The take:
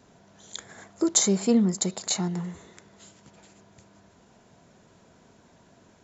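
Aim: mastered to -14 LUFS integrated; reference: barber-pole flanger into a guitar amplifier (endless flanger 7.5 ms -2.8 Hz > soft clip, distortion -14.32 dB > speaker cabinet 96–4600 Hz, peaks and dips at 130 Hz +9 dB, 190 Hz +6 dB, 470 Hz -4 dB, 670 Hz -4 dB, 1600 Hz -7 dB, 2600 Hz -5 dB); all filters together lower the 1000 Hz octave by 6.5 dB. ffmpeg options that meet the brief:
-filter_complex "[0:a]equalizer=f=1k:t=o:g=-6,asplit=2[a][b];[b]adelay=7.5,afreqshift=-2.8[c];[a][c]amix=inputs=2:normalize=1,asoftclip=threshold=-20dB,highpass=96,equalizer=f=130:t=q:w=4:g=9,equalizer=f=190:t=q:w=4:g=6,equalizer=f=470:t=q:w=4:g=-4,equalizer=f=670:t=q:w=4:g=-4,equalizer=f=1.6k:t=q:w=4:g=-7,equalizer=f=2.6k:t=q:w=4:g=-5,lowpass=f=4.6k:w=0.5412,lowpass=f=4.6k:w=1.3066,volume=14.5dB"

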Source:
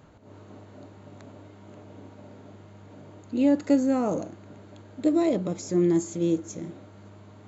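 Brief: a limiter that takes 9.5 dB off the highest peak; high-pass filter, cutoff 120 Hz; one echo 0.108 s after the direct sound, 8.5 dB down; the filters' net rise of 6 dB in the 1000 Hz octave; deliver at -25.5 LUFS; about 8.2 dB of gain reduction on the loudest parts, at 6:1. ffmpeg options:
-af "highpass=120,equalizer=f=1k:t=o:g=8.5,acompressor=threshold=-24dB:ratio=6,alimiter=limit=-24dB:level=0:latency=1,aecho=1:1:108:0.376,volume=9.5dB"

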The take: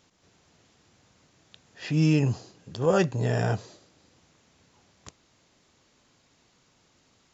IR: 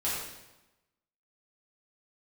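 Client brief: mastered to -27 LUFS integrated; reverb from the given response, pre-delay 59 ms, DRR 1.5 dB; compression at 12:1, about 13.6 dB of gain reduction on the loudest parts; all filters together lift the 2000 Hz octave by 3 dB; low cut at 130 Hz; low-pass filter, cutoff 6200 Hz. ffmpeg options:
-filter_complex "[0:a]highpass=130,lowpass=6.2k,equalizer=f=2k:t=o:g=4,acompressor=threshold=-31dB:ratio=12,asplit=2[a][b];[1:a]atrim=start_sample=2205,adelay=59[c];[b][c]afir=irnorm=-1:irlink=0,volume=-9dB[d];[a][d]amix=inputs=2:normalize=0,volume=8.5dB"

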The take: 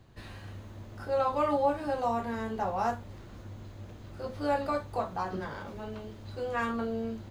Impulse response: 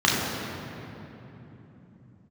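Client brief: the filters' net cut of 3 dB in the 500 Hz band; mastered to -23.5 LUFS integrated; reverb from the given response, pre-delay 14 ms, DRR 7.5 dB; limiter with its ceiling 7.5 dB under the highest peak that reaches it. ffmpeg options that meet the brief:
-filter_complex "[0:a]equalizer=f=500:t=o:g=-3.5,alimiter=level_in=0.5dB:limit=-24dB:level=0:latency=1,volume=-0.5dB,asplit=2[a][b];[1:a]atrim=start_sample=2205,adelay=14[c];[b][c]afir=irnorm=-1:irlink=0,volume=-27dB[d];[a][d]amix=inputs=2:normalize=0,volume=12dB"

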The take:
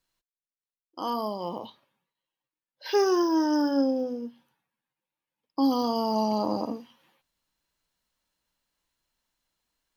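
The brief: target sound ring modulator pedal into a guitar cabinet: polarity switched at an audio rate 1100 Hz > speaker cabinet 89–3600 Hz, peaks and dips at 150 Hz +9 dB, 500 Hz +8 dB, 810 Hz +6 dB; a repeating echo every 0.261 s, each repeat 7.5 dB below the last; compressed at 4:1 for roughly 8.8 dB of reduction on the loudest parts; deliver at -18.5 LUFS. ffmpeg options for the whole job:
-af "acompressor=threshold=-30dB:ratio=4,aecho=1:1:261|522|783|1044|1305:0.422|0.177|0.0744|0.0312|0.0131,aeval=exprs='val(0)*sgn(sin(2*PI*1100*n/s))':c=same,highpass=89,equalizer=f=150:t=q:w=4:g=9,equalizer=f=500:t=q:w=4:g=8,equalizer=f=810:t=q:w=4:g=6,lowpass=f=3.6k:w=0.5412,lowpass=f=3.6k:w=1.3066,volume=12.5dB"

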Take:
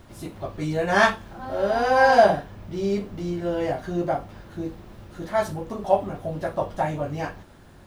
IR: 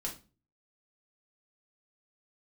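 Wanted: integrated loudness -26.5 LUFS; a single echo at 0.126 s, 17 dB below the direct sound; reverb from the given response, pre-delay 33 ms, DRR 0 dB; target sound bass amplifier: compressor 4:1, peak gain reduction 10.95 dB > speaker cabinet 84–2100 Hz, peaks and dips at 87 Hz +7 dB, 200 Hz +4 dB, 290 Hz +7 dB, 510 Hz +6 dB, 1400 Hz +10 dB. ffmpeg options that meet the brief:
-filter_complex "[0:a]aecho=1:1:126:0.141,asplit=2[a][b];[1:a]atrim=start_sample=2205,adelay=33[c];[b][c]afir=irnorm=-1:irlink=0,volume=-0.5dB[d];[a][d]amix=inputs=2:normalize=0,acompressor=threshold=-19dB:ratio=4,highpass=f=84:w=0.5412,highpass=f=84:w=1.3066,equalizer=f=87:t=q:w=4:g=7,equalizer=f=200:t=q:w=4:g=4,equalizer=f=290:t=q:w=4:g=7,equalizer=f=510:t=q:w=4:g=6,equalizer=f=1.4k:t=q:w=4:g=10,lowpass=f=2.1k:w=0.5412,lowpass=f=2.1k:w=1.3066,volume=-4.5dB"

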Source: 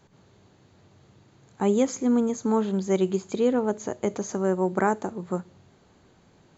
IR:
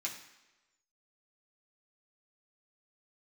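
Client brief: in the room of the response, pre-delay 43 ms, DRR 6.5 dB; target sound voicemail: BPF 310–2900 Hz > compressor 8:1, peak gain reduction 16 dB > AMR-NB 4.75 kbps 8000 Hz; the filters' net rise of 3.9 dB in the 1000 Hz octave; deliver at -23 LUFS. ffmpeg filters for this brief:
-filter_complex "[0:a]equalizer=f=1k:t=o:g=5,asplit=2[a][b];[1:a]atrim=start_sample=2205,adelay=43[c];[b][c]afir=irnorm=-1:irlink=0,volume=-8dB[d];[a][d]amix=inputs=2:normalize=0,highpass=310,lowpass=2.9k,acompressor=threshold=-31dB:ratio=8,volume=14.5dB" -ar 8000 -c:a libopencore_amrnb -b:a 4750

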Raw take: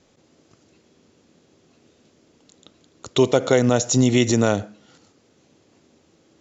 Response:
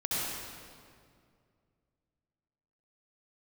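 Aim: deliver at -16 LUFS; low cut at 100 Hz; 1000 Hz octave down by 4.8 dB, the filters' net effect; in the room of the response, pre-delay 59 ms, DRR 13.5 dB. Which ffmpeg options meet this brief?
-filter_complex "[0:a]highpass=100,equalizer=f=1k:t=o:g=-7.5,asplit=2[a][b];[1:a]atrim=start_sample=2205,adelay=59[c];[b][c]afir=irnorm=-1:irlink=0,volume=-21dB[d];[a][d]amix=inputs=2:normalize=0,volume=4dB"

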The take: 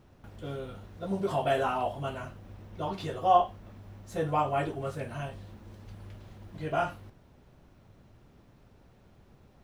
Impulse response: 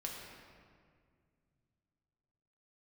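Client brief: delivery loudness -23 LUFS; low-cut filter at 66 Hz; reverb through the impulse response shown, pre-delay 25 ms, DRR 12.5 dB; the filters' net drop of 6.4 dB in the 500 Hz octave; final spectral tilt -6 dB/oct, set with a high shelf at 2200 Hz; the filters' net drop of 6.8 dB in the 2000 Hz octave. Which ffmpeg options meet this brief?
-filter_complex "[0:a]highpass=66,equalizer=f=500:t=o:g=-8.5,equalizer=f=2k:t=o:g=-7.5,highshelf=f=2.2k:g=-3.5,asplit=2[a][b];[1:a]atrim=start_sample=2205,adelay=25[c];[b][c]afir=irnorm=-1:irlink=0,volume=-12.5dB[d];[a][d]amix=inputs=2:normalize=0,volume=13dB"

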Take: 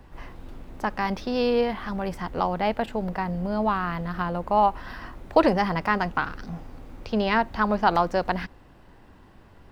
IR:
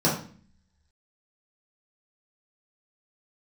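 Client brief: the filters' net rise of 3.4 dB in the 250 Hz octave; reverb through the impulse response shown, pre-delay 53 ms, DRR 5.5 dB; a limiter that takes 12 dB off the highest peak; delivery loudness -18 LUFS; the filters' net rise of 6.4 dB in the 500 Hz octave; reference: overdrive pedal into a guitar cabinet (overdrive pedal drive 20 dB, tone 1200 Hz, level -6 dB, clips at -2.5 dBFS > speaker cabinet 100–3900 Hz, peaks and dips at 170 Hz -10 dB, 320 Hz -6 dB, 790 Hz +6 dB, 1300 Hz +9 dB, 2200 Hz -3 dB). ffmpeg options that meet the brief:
-filter_complex "[0:a]equalizer=f=250:t=o:g=8,equalizer=f=500:t=o:g=5.5,alimiter=limit=-11.5dB:level=0:latency=1,asplit=2[a][b];[1:a]atrim=start_sample=2205,adelay=53[c];[b][c]afir=irnorm=-1:irlink=0,volume=-20dB[d];[a][d]amix=inputs=2:normalize=0,asplit=2[e][f];[f]highpass=f=720:p=1,volume=20dB,asoftclip=type=tanh:threshold=-2.5dB[g];[e][g]amix=inputs=2:normalize=0,lowpass=f=1.2k:p=1,volume=-6dB,highpass=100,equalizer=f=170:t=q:w=4:g=-10,equalizer=f=320:t=q:w=4:g=-6,equalizer=f=790:t=q:w=4:g=6,equalizer=f=1.3k:t=q:w=4:g=9,equalizer=f=2.2k:t=q:w=4:g=-3,lowpass=f=3.9k:w=0.5412,lowpass=f=3.9k:w=1.3066,volume=-4dB"

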